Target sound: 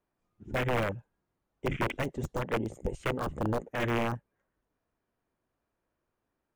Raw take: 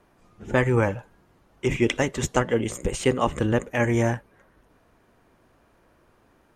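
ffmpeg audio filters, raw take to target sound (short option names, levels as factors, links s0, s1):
-af "aeval=exprs='(mod(5.62*val(0)+1,2)-1)/5.62':c=same,afwtdn=0.0398,volume=0.501"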